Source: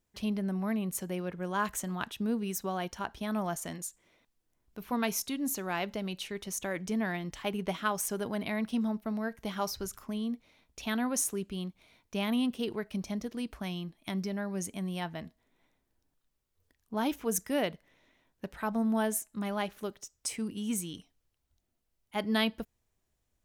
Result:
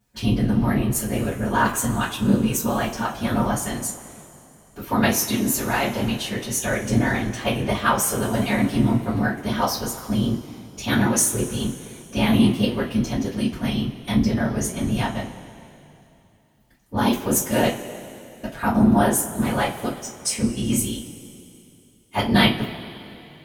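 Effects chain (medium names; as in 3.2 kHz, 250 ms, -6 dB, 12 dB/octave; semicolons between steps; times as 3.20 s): whisper effect; two-slope reverb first 0.23 s, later 2.9 s, from -22 dB, DRR -7.5 dB; trim +3 dB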